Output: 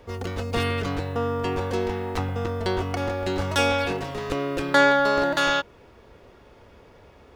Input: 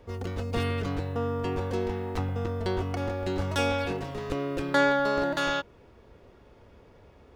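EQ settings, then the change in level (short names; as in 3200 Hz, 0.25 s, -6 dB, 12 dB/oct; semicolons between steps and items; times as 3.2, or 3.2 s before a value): low shelf 500 Hz -5.5 dB; +7.0 dB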